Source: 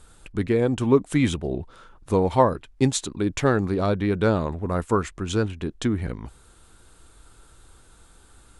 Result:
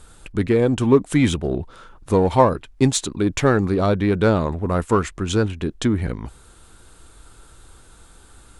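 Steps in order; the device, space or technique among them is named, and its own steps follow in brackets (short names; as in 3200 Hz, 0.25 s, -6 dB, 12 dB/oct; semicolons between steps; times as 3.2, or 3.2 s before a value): parallel distortion (in parallel at -10.5 dB: hard clip -22 dBFS, distortion -6 dB); on the sum: gain +2.5 dB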